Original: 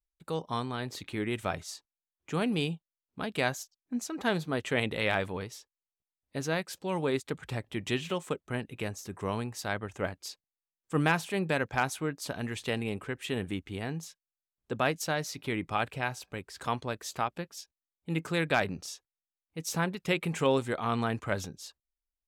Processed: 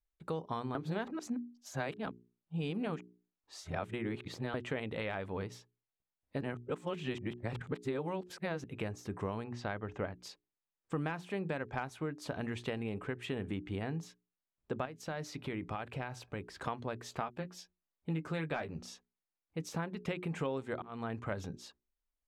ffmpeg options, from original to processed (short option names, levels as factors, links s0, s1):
-filter_complex "[0:a]asettb=1/sr,asplit=3[s0][s1][s2];[s0]atrim=end=9.444[s3];[s1]atrim=start=9.44:end=10.18,asetpts=PTS-STARTPTS,afade=t=in:d=0.004:c=qsin,afade=t=out:st=0.736:d=0.004:c=qsin,lowpass=4500[s4];[s2]atrim=start=10.176[s5];[s3][s4]acrossfade=d=0.004:c1=hsin:c2=qsin[s6];[s6][s5]acrossfade=d=0.004:c1=qsin:c2=hsin,asettb=1/sr,asplit=3[s7][s8][s9];[s7]atrim=end=14.854[s10];[s8]atrim=start=14.85:end=16.57,asetpts=PTS-STARTPTS,afade=t=in:d=0.004:c=qsin,afade=t=out:st=1.716:d=0.004:c=qsin,acompressor=threshold=0.0158:ratio=3:attack=3.2:release=140:knee=1:detection=peak[s11];[s9]atrim=start=16.566[s12];[s10][s11]acrossfade=d=0.004:c1=hsin:c2=qsin[s13];[s13][s12]acrossfade=d=0.004:c1=qsin:c2=hsin,asettb=1/sr,asplit=3[s14][s15][s16];[s14]atrim=end=17.204[s17];[s15]atrim=start=17.2:end=18.79,asetpts=PTS-STARTPTS,afade=t=in:d=0.004:c=qsin,afade=t=out:st=1.586:d=0.004:c=qsin,asplit=2[s18][s19];[s19]adelay=13,volume=0.531[s20];[s18][s20]amix=inputs=2:normalize=0,atrim=end_sample=70119[s21];[s16]atrim=start=18.786[s22];[s17][s21]acrossfade=d=0.004:c1=hsin:c2=qsin[s23];[s23][s22]acrossfade=d=0.004:c1=qsin:c2=hsin,asplit=6[s24][s25][s26][s27][s28][s29];[s24]atrim=end=0.752[s30];[s25]atrim=start=0.748:end=4.542,asetpts=PTS-STARTPTS,areverse[s31];[s26]atrim=start=4.538:end=6.412[s32];[s27]atrim=start=6.408:end=8.642,asetpts=PTS-STARTPTS,areverse[s33];[s28]atrim=start=8.638:end=20.82,asetpts=PTS-STARTPTS,afade=t=out:st=12.178:d=0.004:c=hsin[s34];[s29]atrim=start=20.82,asetpts=PTS-STARTPTS,afade=t=in:d=0.66[s35];[s30][s31]acrossfade=d=0.004:c1=hsin:c2=hsin[s36];[s36][s32]acrossfade=d=0.004:c1=hsin:c2=hsin[s37];[s37][s33]acrossfade=d=0.004:c1=hsin:c2=hsin[s38];[s34][s35]concat=n=2:v=0:a=1[s39];[s38][s39]acrossfade=d=0.004:c1=hsin:c2=hsin,bandreject=f=60:t=h:w=6,bandreject=f=120:t=h:w=6,bandreject=f=180:t=h:w=6,bandreject=f=240:t=h:w=6,bandreject=f=300:t=h:w=6,bandreject=f=360:t=h:w=6,bandreject=f=420:t=h:w=6,acompressor=threshold=0.0158:ratio=6,lowpass=f=1700:p=1,volume=1.41"